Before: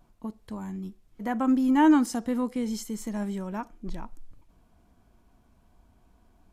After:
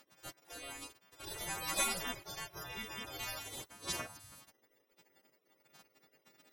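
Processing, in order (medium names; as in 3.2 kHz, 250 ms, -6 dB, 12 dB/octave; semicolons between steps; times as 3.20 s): partials quantised in pitch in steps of 2 st; peaking EQ 310 Hz -13.5 dB 1.7 oct; pre-echo 62 ms -17 dB; spectral gate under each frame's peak -25 dB weak; trim +13.5 dB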